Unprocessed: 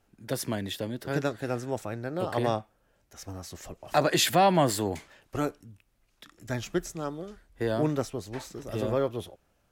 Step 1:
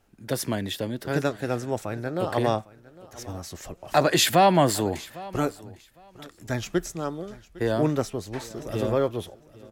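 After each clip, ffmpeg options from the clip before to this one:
-af "aecho=1:1:806|1612:0.0944|0.0179,volume=1.5"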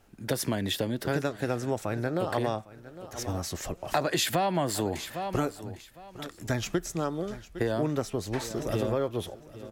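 -af "acompressor=threshold=0.0355:ratio=5,volume=1.58"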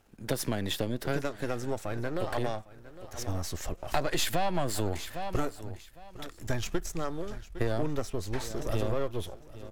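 -af "aeval=exprs='if(lt(val(0),0),0.447*val(0),val(0))':c=same,asubboost=boost=3:cutoff=90"

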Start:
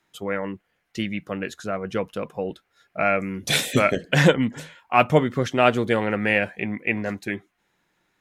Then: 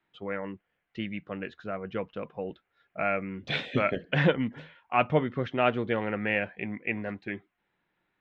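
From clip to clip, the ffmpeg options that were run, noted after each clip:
-af "lowpass=f=3400:w=0.5412,lowpass=f=3400:w=1.3066,volume=0.447"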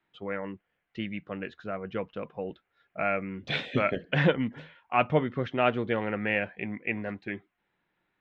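-af anull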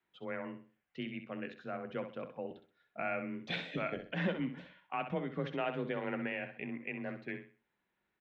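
-af "alimiter=limit=0.119:level=0:latency=1:release=147,afreqshift=25,aecho=1:1:64|128|192|256:0.355|0.11|0.0341|0.0106,volume=0.473"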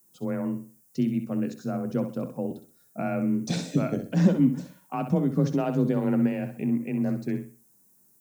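-af "aexciter=amount=13:drive=8:freq=5000,equalizer=f=125:t=o:w=1:g=10,equalizer=f=250:t=o:w=1:g=9,equalizer=f=2000:t=o:w=1:g=-11,equalizer=f=4000:t=o:w=1:g=-4,volume=2.11"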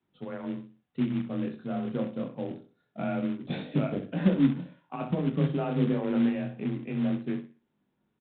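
-af "flanger=delay=20:depth=7.2:speed=0.26,acrusher=bits=4:mode=log:mix=0:aa=0.000001,aresample=8000,aresample=44100"

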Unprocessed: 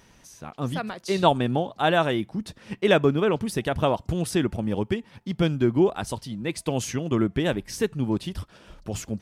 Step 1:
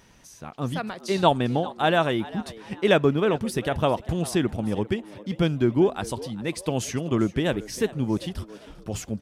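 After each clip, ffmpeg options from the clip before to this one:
-filter_complex "[0:a]asplit=4[s0][s1][s2][s3];[s1]adelay=399,afreqshift=100,volume=0.119[s4];[s2]adelay=798,afreqshift=200,volume=0.0417[s5];[s3]adelay=1197,afreqshift=300,volume=0.0146[s6];[s0][s4][s5][s6]amix=inputs=4:normalize=0"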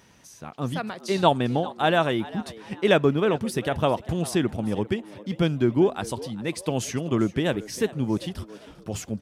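-af "highpass=70"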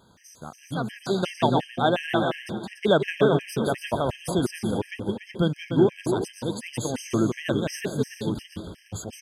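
-af "aecho=1:1:170|289|372.3|430.6|471.4:0.631|0.398|0.251|0.158|0.1,afftfilt=real='re*gt(sin(2*PI*2.8*pts/sr)*(1-2*mod(floor(b*sr/1024/1600),2)),0)':imag='im*gt(sin(2*PI*2.8*pts/sr)*(1-2*mod(floor(b*sr/1024/1600),2)),0)':win_size=1024:overlap=0.75"

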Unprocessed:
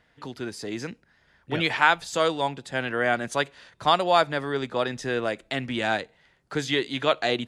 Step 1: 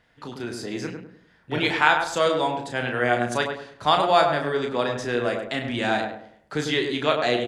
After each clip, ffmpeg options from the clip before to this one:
-filter_complex "[0:a]asplit=2[s0][s1];[s1]adelay=33,volume=0.501[s2];[s0][s2]amix=inputs=2:normalize=0,asplit=2[s3][s4];[s4]adelay=101,lowpass=f=1300:p=1,volume=0.631,asplit=2[s5][s6];[s6]adelay=101,lowpass=f=1300:p=1,volume=0.39,asplit=2[s7][s8];[s8]adelay=101,lowpass=f=1300:p=1,volume=0.39,asplit=2[s9][s10];[s10]adelay=101,lowpass=f=1300:p=1,volume=0.39,asplit=2[s11][s12];[s12]adelay=101,lowpass=f=1300:p=1,volume=0.39[s13];[s5][s7][s9][s11][s13]amix=inputs=5:normalize=0[s14];[s3][s14]amix=inputs=2:normalize=0"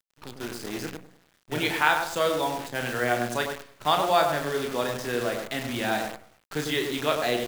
-af "acrusher=bits=6:dc=4:mix=0:aa=0.000001,volume=0.668"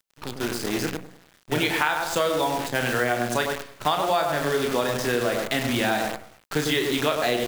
-af "acompressor=threshold=0.0447:ratio=6,volume=2.37"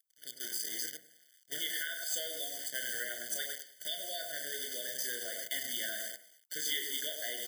-af "aderivative,afftfilt=real='re*eq(mod(floor(b*sr/1024/730),2),0)':imag='im*eq(mod(floor(b*sr/1024/730),2),0)':win_size=1024:overlap=0.75"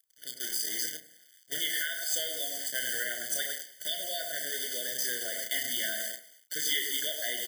-filter_complex "[0:a]asplit=2[s0][s1];[s1]adelay=32,volume=0.398[s2];[s0][s2]amix=inputs=2:normalize=0,volume=1.68"

